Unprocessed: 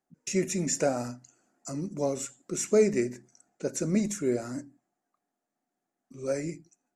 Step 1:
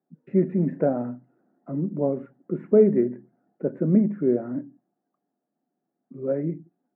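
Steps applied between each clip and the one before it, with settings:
elliptic band-pass filter 150–1,800 Hz, stop band 50 dB
tilt shelving filter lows +9.5 dB, about 880 Hz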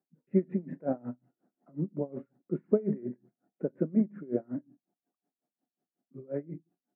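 tremolo with a sine in dB 5.5 Hz, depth 26 dB
level −2.5 dB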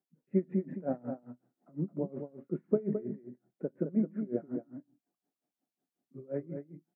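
in parallel at 0 dB: speech leveller within 4 dB 2 s
on the sum: single-tap delay 215 ms −7.5 dB
level −8.5 dB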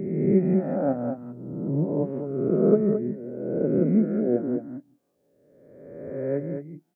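peak hold with a rise ahead of every peak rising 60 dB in 1.48 s
level +6.5 dB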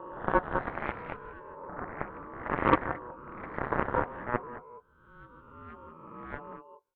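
delay with pitch and tempo change per echo 372 ms, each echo +3 semitones, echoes 2, each echo −6 dB
harmonic generator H 3 −26 dB, 6 −26 dB, 7 −15 dB, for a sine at −5 dBFS
ring modulation 730 Hz
level −1 dB

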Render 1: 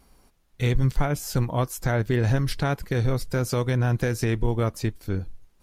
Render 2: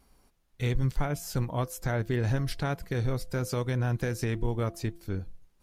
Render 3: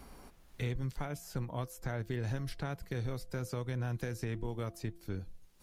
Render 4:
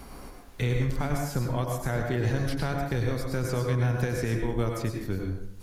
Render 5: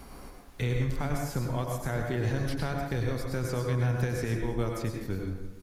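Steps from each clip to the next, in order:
hum removal 170.4 Hz, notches 4; level −5.5 dB
multiband upward and downward compressor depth 70%; level −8.5 dB
dense smooth reverb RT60 0.75 s, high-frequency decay 0.55×, pre-delay 85 ms, DRR 1.5 dB; level +8 dB
repeating echo 170 ms, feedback 60%, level −16 dB; level −2.5 dB

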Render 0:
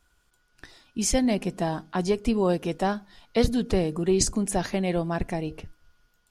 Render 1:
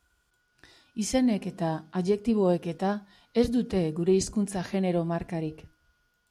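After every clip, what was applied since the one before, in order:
high-pass filter 45 Hz
harmonic and percussive parts rebalanced percussive −9 dB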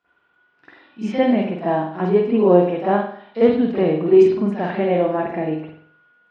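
band-pass filter 250–2,800 Hz
convolution reverb, pre-delay 45 ms, DRR −13 dB
level −2 dB

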